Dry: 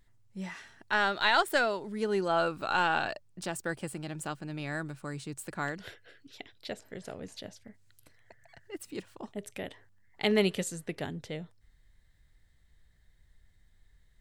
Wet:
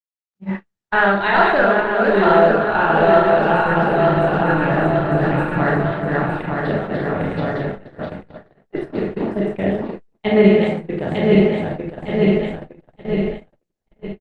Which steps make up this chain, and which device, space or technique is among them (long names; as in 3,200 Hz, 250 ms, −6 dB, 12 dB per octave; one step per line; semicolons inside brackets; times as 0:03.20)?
feedback delay that plays each chunk backwards 454 ms, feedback 73%, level −2.5 dB
low-shelf EQ 430 Hz +4 dB
0:07.21–0:07.68: comb filter 7.1 ms, depth 51%
high-frequency loss of the air 460 metres
speakerphone in a meeting room (convolution reverb RT60 0.60 s, pre-delay 24 ms, DRR −2.5 dB; far-end echo of a speakerphone 100 ms, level −26 dB; automatic gain control gain up to 13 dB; noise gate −23 dBFS, range −55 dB; Opus 20 kbit/s 48,000 Hz)